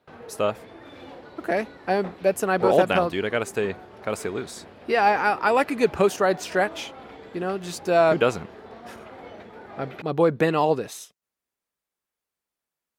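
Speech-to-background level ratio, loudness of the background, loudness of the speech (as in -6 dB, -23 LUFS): 19.5 dB, -43.0 LUFS, -23.5 LUFS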